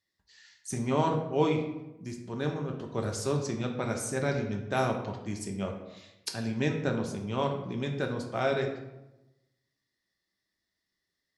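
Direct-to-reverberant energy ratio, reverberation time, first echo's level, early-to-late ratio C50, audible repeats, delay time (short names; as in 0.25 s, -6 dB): 2.0 dB, 0.95 s, none, 7.0 dB, none, none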